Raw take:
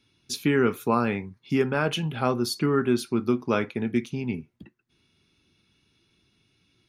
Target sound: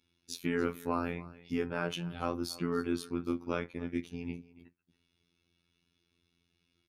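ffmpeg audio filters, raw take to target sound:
-af "aecho=1:1:284:0.112,aeval=exprs='val(0)*sin(2*PI*22*n/s)':c=same,afftfilt=real='hypot(re,im)*cos(PI*b)':imag='0':win_size=2048:overlap=0.75,volume=-3.5dB"

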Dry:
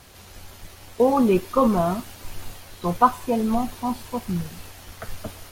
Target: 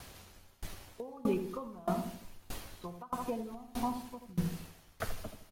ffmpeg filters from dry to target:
-filter_complex "[0:a]asplit=2[a][b];[b]adelay=80,lowpass=f=940:p=1,volume=-5dB,asplit=2[c][d];[d]adelay=80,lowpass=f=940:p=1,volume=0.54,asplit=2[e][f];[f]adelay=80,lowpass=f=940:p=1,volume=0.54,asplit=2[g][h];[h]adelay=80,lowpass=f=940:p=1,volume=0.54,asplit=2[i][j];[j]adelay=80,lowpass=f=940:p=1,volume=0.54,asplit=2[k][l];[l]adelay=80,lowpass=f=940:p=1,volume=0.54,asplit=2[m][n];[n]adelay=80,lowpass=f=940:p=1,volume=0.54[o];[a][c][e][g][i][k][m][o]amix=inputs=8:normalize=0,acompressor=threshold=-25dB:ratio=6,aeval=exprs='val(0)*pow(10,-25*if(lt(mod(1.6*n/s,1),2*abs(1.6)/1000),1-mod(1.6*n/s,1)/(2*abs(1.6)/1000),(mod(1.6*n/s,1)-2*abs(1.6)/1000)/(1-2*abs(1.6)/1000))/20)':c=same"

